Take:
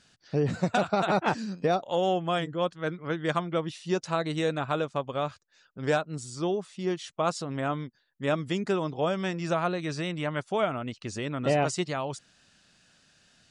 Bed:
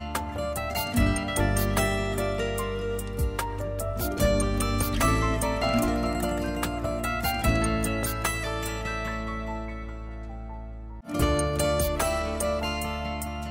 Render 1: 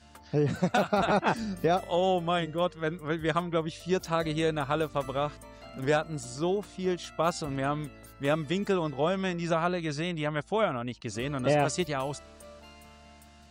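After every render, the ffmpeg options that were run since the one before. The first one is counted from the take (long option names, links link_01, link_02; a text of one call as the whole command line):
ffmpeg -i in.wav -i bed.wav -filter_complex "[1:a]volume=-22dB[link_01];[0:a][link_01]amix=inputs=2:normalize=0" out.wav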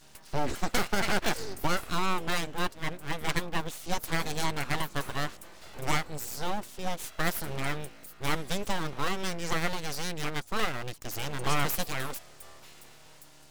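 ffmpeg -i in.wav -af "aeval=exprs='abs(val(0))':channel_layout=same,crystalizer=i=1.5:c=0" out.wav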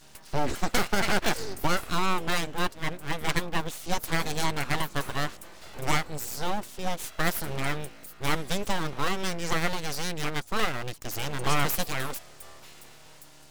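ffmpeg -i in.wav -af "volume=2.5dB" out.wav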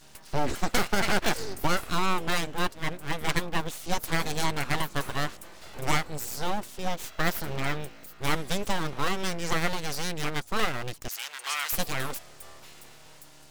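ffmpeg -i in.wav -filter_complex "[0:a]asettb=1/sr,asplit=3[link_01][link_02][link_03];[link_01]atrim=end=6.874[link_04];[link_02]atrim=start=6.87:end=8.19,asetpts=PTS-STARTPTS,afade=type=in:duration=0.004:curve=qsin,afade=type=out:start_time=1.316:duration=0.004:curve=qsin,equalizer=frequency=10000:width=1.6:gain=-6[link_05];[link_03]atrim=start=8.186[link_06];[link_04][link_05]acrossfade=duration=0.004:curve1=hsin:curve2=qsin[link_07];[link_07][link_06]acrossfade=duration=0.004:curve1=qsin:curve2=hsin,asettb=1/sr,asplit=3[link_08][link_09][link_10];[link_08]atrim=end=11.084[link_11];[link_09]atrim=start=11.08:end=11.73,asetpts=PTS-STARTPTS,afade=type=in:duration=0.004:curve=qsin,afade=type=out:start_time=0.646:duration=0.004:curve=qsin,highpass=1500[link_12];[link_10]atrim=start=11.726[link_13];[link_11][link_12]acrossfade=duration=0.004:curve1=hsin:curve2=qsin[link_14];[link_14][link_13]acrossfade=duration=0.004:curve1=qsin:curve2=hsin" out.wav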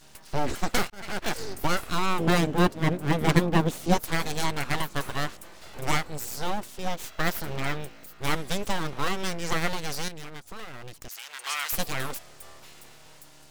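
ffmpeg -i in.wav -filter_complex "[0:a]asettb=1/sr,asplit=3[link_01][link_02][link_03];[link_01]atrim=end=2.194[link_04];[link_02]atrim=start=2.19:end=3.97,asetpts=PTS-STARTPTS,afade=type=in:duration=0.004:curve=qsin,afade=type=out:start_time=1.776:duration=0.004:curve=qsin,equalizer=frequency=220:width=0.34:gain=12.5[link_05];[link_03]atrim=start=3.966[link_06];[link_04][link_05]acrossfade=duration=0.004:curve1=hsin:curve2=qsin[link_07];[link_07][link_06]acrossfade=duration=0.004:curve1=qsin:curve2=hsin,asettb=1/sr,asplit=3[link_08][link_09][link_10];[link_08]atrim=end=10.084[link_11];[link_09]atrim=start=10.08:end=11.32,asetpts=PTS-STARTPTS,afade=type=in:duration=0.004:curve=qsin,afade=type=out:start_time=1.236:duration=0.004:curve=qsin,acompressor=threshold=-36dB:ratio=4:attack=3.2:release=140:knee=1:detection=peak[link_12];[link_10]atrim=start=11.316[link_13];[link_11][link_12]acrossfade=duration=0.004:curve1=hsin:curve2=qsin[link_14];[link_14][link_13]acrossfade=duration=0.004:curve1=qsin:curve2=hsin,asplit=2[link_15][link_16];[link_15]atrim=end=0.9,asetpts=PTS-STARTPTS,afade=type=out:start_time=0.896:duration=0.004:curve=hsin[link_17];[link_16]atrim=start=0.9,asetpts=PTS-STARTPTS,afade=type=in:duration=0.56[link_18];[link_17][link_18]concat=n=2:v=0:a=1" out.wav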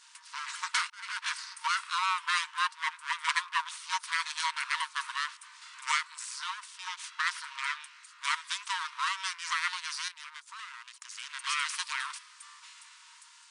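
ffmpeg -i in.wav -af "afftfilt=real='re*between(b*sr/4096,910,10000)':imag='im*between(b*sr/4096,910,10000)':win_size=4096:overlap=0.75,adynamicequalizer=threshold=0.00158:dfrequency=7200:dqfactor=3.5:tfrequency=7200:tqfactor=3.5:attack=5:release=100:ratio=0.375:range=3:mode=cutabove:tftype=bell" out.wav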